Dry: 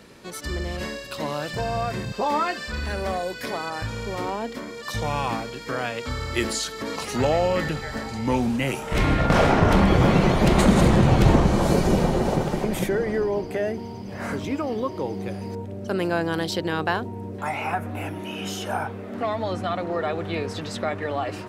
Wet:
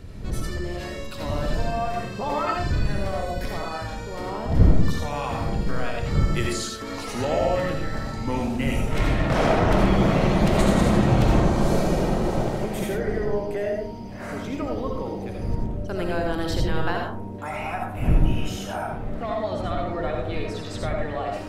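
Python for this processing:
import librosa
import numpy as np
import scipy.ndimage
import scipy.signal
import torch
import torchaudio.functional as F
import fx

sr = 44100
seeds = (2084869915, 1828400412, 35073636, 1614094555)

y = fx.dmg_wind(x, sr, seeds[0], corner_hz=120.0, level_db=-26.0)
y = fx.rev_freeverb(y, sr, rt60_s=0.58, hf_ratio=0.3, predelay_ms=40, drr_db=0.5)
y = F.gain(torch.from_numpy(y), -5.0).numpy()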